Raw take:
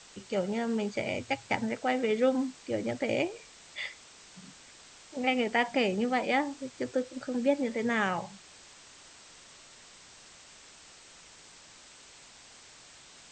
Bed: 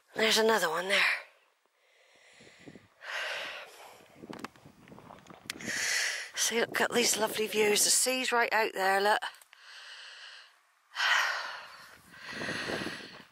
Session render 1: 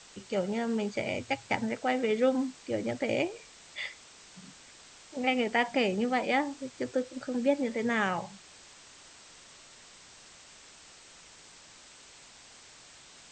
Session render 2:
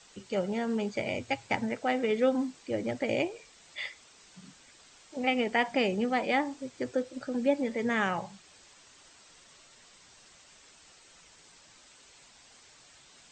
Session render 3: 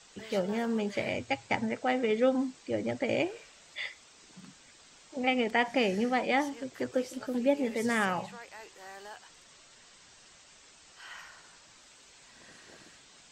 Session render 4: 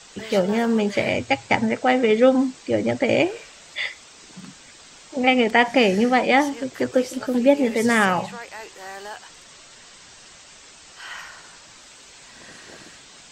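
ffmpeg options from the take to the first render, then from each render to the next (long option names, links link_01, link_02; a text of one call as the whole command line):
ffmpeg -i in.wav -af anull out.wav
ffmpeg -i in.wav -af "afftdn=noise_reduction=6:noise_floor=-54" out.wav
ffmpeg -i in.wav -i bed.wav -filter_complex "[1:a]volume=-20.5dB[link_01];[0:a][link_01]amix=inputs=2:normalize=0" out.wav
ffmpeg -i in.wav -af "volume=10.5dB" out.wav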